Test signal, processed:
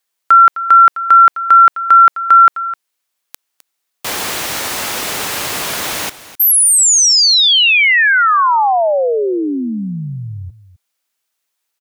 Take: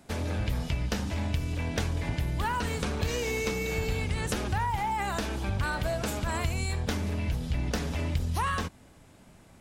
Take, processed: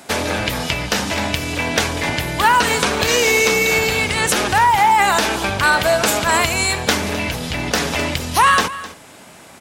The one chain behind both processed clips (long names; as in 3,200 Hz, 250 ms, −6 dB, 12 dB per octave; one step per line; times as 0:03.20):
high-pass filter 650 Hz 6 dB per octave
on a send: single-tap delay 258 ms −16 dB
on the sum: boost into a limiter +20 dB
level −1 dB